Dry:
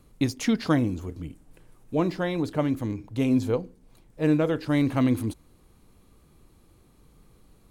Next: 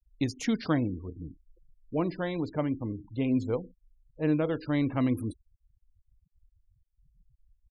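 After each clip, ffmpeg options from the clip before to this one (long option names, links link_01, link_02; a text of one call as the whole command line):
ffmpeg -i in.wav -af "afftfilt=real='re*gte(hypot(re,im),0.0126)':imag='im*gte(hypot(re,im),0.0126)':win_size=1024:overlap=0.75,volume=-4.5dB" out.wav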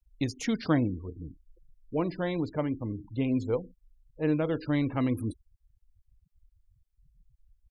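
ffmpeg -i in.wav -af "aphaser=in_gain=1:out_gain=1:delay=2.4:decay=0.2:speed=1.3:type=sinusoidal" out.wav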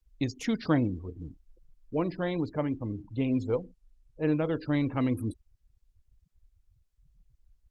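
ffmpeg -i in.wav -ar 48000 -c:a libopus -b:a 20k out.opus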